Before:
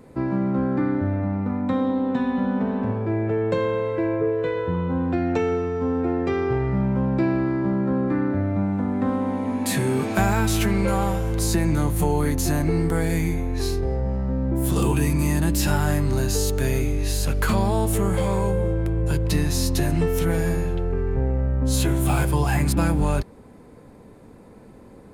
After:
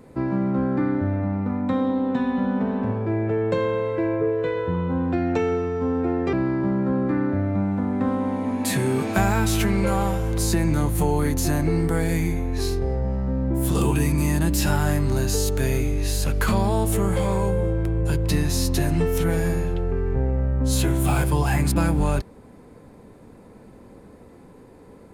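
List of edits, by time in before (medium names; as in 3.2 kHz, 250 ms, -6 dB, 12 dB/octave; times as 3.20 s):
6.33–7.34 s: delete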